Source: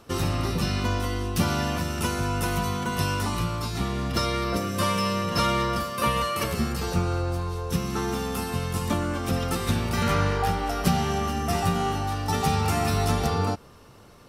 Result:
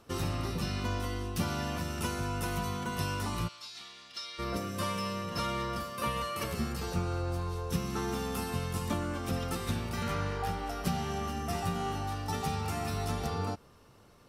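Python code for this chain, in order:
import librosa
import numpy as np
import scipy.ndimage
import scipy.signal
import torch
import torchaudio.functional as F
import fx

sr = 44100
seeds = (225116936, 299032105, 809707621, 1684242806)

y = fx.rider(x, sr, range_db=10, speed_s=0.5)
y = fx.bandpass_q(y, sr, hz=4100.0, q=1.4, at=(3.47, 4.38), fade=0.02)
y = y * librosa.db_to_amplitude(-8.0)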